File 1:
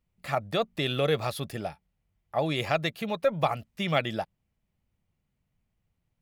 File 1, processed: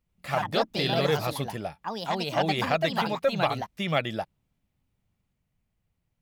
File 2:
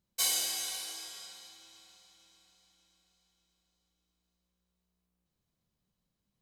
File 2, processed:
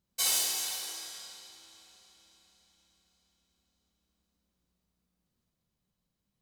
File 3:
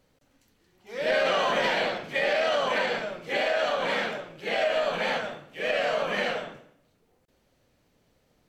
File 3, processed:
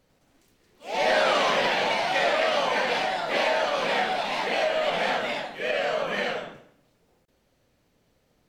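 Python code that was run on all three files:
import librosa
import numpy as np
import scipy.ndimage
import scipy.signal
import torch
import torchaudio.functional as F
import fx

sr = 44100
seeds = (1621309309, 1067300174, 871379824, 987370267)

y = fx.echo_pitch(x, sr, ms=96, semitones=3, count=2, db_per_echo=-3.0)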